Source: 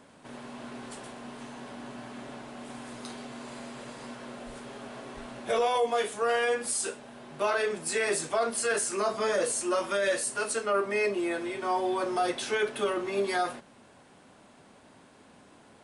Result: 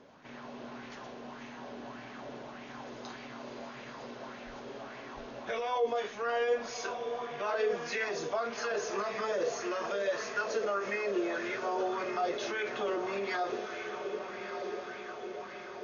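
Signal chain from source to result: brick-wall FIR low-pass 6800 Hz; diffused feedback echo 1.291 s, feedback 62%, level -9.5 dB; limiter -23 dBFS, peak gain reduction 7 dB; LFO bell 1.7 Hz 410–2300 Hz +8 dB; gain -4.5 dB

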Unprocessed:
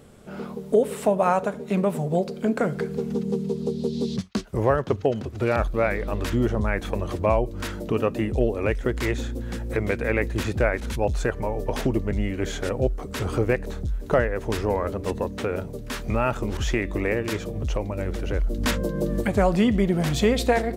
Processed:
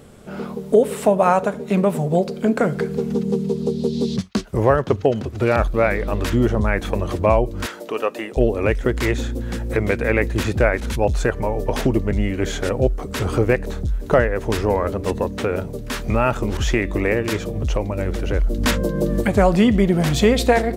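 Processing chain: 7.66–8.37 HPF 510 Hz 12 dB/oct; gain +5 dB

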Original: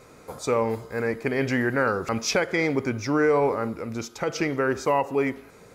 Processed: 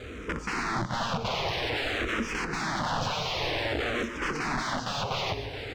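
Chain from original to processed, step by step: switching spikes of -24.5 dBFS; HPF 49 Hz 12 dB/oct; RIAA curve playback; notch 550 Hz, Q 12; in parallel at 0 dB: limiter -15.5 dBFS, peak gain reduction 8 dB; on the sum: wrapped overs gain 20 dB; air absorption 170 m; on a send: feedback echo 0.426 s, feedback 56%, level -11 dB; on the sum: endless phaser -0.52 Hz

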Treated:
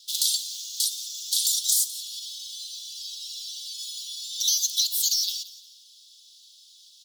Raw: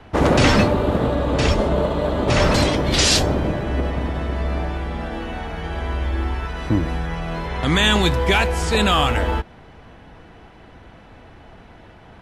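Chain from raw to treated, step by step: steep high-pass 2000 Hz 72 dB/oct; high shelf 10000 Hz +11.5 dB; compressor 6:1, threshold -24 dBFS, peak gain reduction 11.5 dB; on a send: feedback echo 0.301 s, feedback 36%, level -17 dB; on the sum: speed mistake 45 rpm record played at 78 rpm; gain +4.5 dB

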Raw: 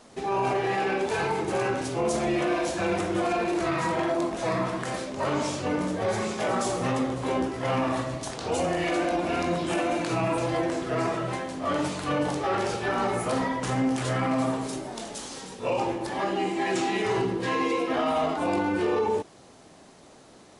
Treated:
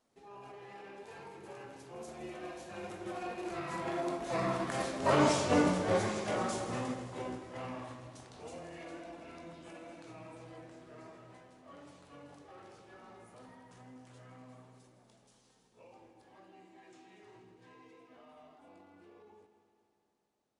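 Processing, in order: Doppler pass-by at 5.3, 10 m/s, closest 6.2 m; multi-head echo 81 ms, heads second and third, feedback 63%, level -13 dB; upward expander 1.5:1, over -41 dBFS; gain +1.5 dB

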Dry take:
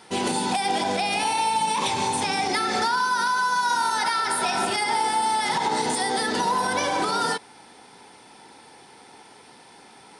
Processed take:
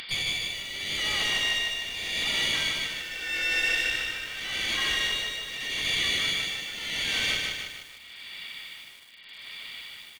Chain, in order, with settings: HPF 100 Hz 24 dB/oct; tilt -4.5 dB/oct; notch 1200 Hz, Q 8.6; limiter -19 dBFS, peak gain reduction 9.5 dB; upward compressor, threshold -35 dBFS; inverted band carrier 3700 Hz; one-sided clip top -30.5 dBFS, bottom -19.5 dBFS; harmoniser -7 st -2 dB, -5 st -16 dB, +5 st -8 dB; frequency-shifting echo 0.307 s, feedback 33%, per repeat -47 Hz, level -10.5 dB; tremolo 0.83 Hz, depth 78%; lo-fi delay 0.152 s, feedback 55%, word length 8-bit, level -3 dB; gain -2 dB

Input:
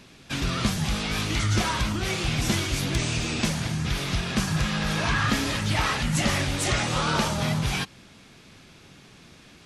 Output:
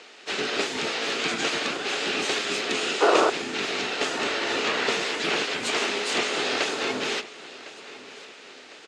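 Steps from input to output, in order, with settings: spectral gate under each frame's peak -10 dB weak; in parallel at -3 dB: compressor 8:1, threshold -40 dBFS, peak gain reduction 16 dB; on the sum: painted sound noise, 3.27–3.59, 550–1400 Hz -22 dBFS; modulation noise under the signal 23 dB; harmoniser -12 st -3 dB, +4 st -13 dB; on a send: feedback echo 1.149 s, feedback 45%, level -18 dB; on the sum: speed mistake 44.1 kHz file played as 48 kHz; speaker cabinet 250–7300 Hz, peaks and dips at 260 Hz +4 dB, 420 Hz +9 dB, 1000 Hz -4 dB, 2600 Hz +3 dB, 5800 Hz -4 dB

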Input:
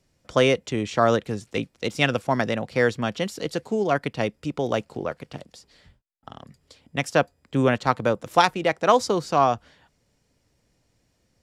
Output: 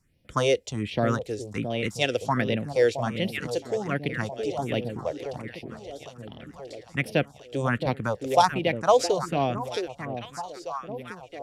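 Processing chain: echo with dull and thin repeats by turns 0.668 s, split 900 Hz, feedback 68%, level -7 dB; phaser stages 4, 1.3 Hz, lowest notch 170–1300 Hz

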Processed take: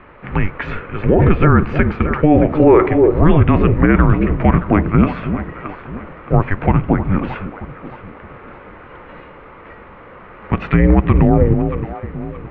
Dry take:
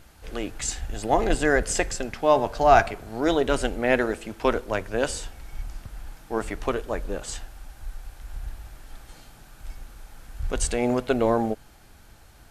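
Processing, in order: echo with dull and thin repeats by turns 0.311 s, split 920 Hz, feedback 59%, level -11 dB; mistuned SSB -310 Hz 260–2600 Hz; dynamic EQ 1500 Hz, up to -5 dB, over -39 dBFS, Q 1.1; maximiser +17.5 dB; gain -1 dB

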